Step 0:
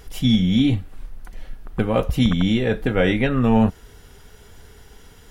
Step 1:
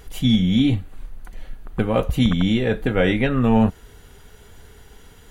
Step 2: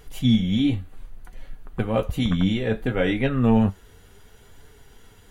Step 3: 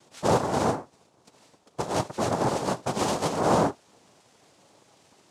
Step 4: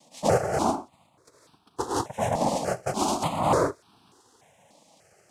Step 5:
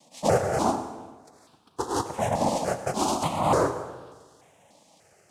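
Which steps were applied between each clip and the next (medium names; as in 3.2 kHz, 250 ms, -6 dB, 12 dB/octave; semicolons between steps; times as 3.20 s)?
band-stop 5.3 kHz, Q 6.7
flange 0.64 Hz, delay 6.5 ms, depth 4.9 ms, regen +54%
noise-vocoded speech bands 2; trim -4 dB
stepped phaser 3.4 Hz 390–2000 Hz; trim +3 dB
plate-style reverb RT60 1.3 s, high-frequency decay 0.7×, pre-delay 80 ms, DRR 10.5 dB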